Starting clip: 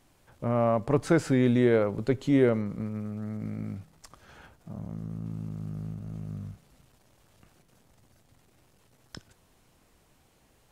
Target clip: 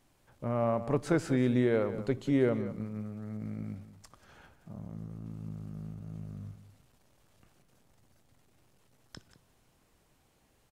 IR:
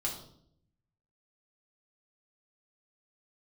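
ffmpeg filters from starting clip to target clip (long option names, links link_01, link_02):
-filter_complex "[0:a]asplit=2[link_01][link_02];[link_02]adelay=186.6,volume=-13dB,highshelf=frequency=4000:gain=-4.2[link_03];[link_01][link_03]amix=inputs=2:normalize=0,asplit=2[link_04][link_05];[1:a]atrim=start_sample=2205[link_06];[link_05][link_06]afir=irnorm=-1:irlink=0,volume=-22.5dB[link_07];[link_04][link_07]amix=inputs=2:normalize=0,volume=-5.5dB"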